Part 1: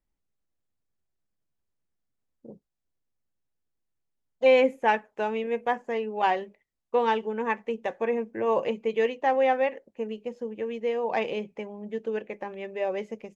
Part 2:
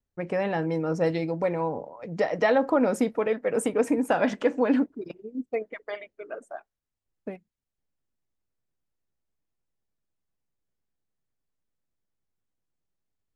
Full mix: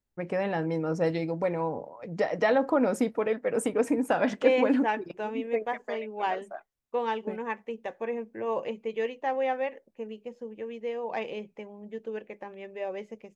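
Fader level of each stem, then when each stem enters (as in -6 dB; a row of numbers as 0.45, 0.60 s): -5.5, -2.0 dB; 0.00, 0.00 s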